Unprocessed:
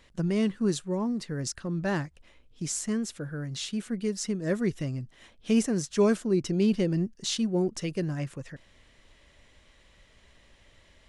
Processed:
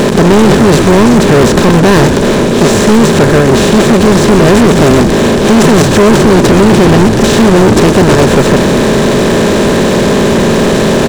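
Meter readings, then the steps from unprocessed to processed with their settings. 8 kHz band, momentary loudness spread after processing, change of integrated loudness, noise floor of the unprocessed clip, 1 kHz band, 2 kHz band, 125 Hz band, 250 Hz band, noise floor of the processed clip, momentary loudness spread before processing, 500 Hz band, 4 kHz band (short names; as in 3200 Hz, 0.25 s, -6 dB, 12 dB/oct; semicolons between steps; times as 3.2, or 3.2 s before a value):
+20.5 dB, 3 LU, +23.0 dB, -60 dBFS, +32.0 dB, +28.5 dB, +24.0 dB, +23.0 dB, -9 dBFS, 11 LU, +25.5 dB, +24.0 dB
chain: per-bin compression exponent 0.2; high shelf 2800 Hz -10.5 dB; frequency-shifting echo 0.127 s, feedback 54%, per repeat -62 Hz, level -10 dB; in parallel at +2 dB: level quantiser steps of 22 dB; on the sum: sample leveller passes 5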